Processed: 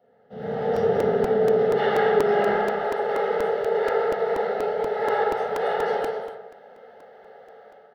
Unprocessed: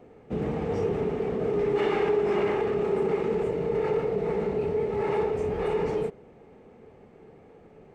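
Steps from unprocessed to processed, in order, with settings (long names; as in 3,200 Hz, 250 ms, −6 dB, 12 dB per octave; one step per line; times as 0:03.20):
high-pass filter 220 Hz 12 dB per octave, from 0:02.54 550 Hz
automatic gain control gain up to 16 dB
phaser with its sweep stopped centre 1,600 Hz, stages 8
loudspeakers that aren't time-aligned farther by 67 metres −10 dB, 89 metres −11 dB
convolution reverb RT60 0.80 s, pre-delay 8 ms, DRR −3.5 dB
regular buffer underruns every 0.24 s, samples 128, repeat, from 0:00.76
level −8.5 dB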